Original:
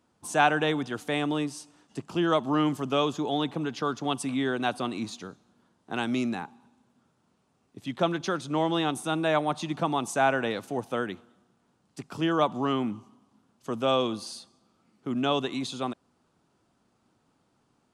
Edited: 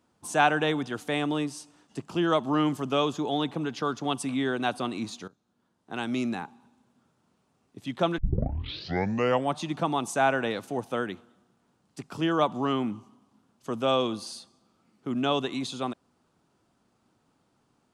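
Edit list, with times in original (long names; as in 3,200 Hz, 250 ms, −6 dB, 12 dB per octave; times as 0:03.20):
0:05.28–0:06.32: fade in, from −17 dB
0:08.18: tape start 1.39 s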